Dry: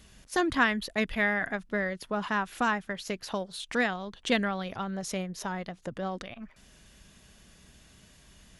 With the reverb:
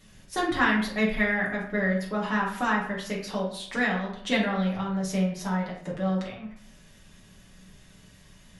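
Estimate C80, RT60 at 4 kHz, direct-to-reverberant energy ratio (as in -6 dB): 9.0 dB, 0.40 s, -5.0 dB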